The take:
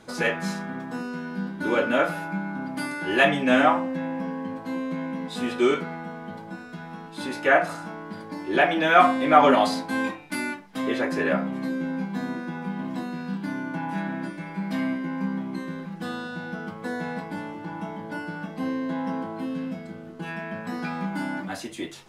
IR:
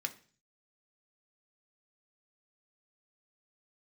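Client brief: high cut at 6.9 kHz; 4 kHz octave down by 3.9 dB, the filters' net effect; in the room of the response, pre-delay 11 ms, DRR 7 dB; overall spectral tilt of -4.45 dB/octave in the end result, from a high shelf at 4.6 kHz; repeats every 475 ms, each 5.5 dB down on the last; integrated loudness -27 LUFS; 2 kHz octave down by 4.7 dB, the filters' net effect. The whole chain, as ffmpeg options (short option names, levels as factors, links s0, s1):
-filter_complex "[0:a]lowpass=6900,equalizer=f=2000:t=o:g=-6.5,equalizer=f=4000:t=o:g=-5,highshelf=f=4600:g=6,aecho=1:1:475|950|1425|1900|2375|2850|3325:0.531|0.281|0.149|0.079|0.0419|0.0222|0.0118,asplit=2[s0][s1];[1:a]atrim=start_sample=2205,adelay=11[s2];[s1][s2]afir=irnorm=-1:irlink=0,volume=0.398[s3];[s0][s3]amix=inputs=2:normalize=0,volume=0.841"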